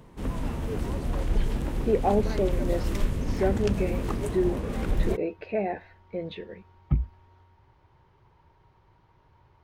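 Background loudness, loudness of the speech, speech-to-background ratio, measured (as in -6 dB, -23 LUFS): -31.0 LUFS, -30.0 LUFS, 1.0 dB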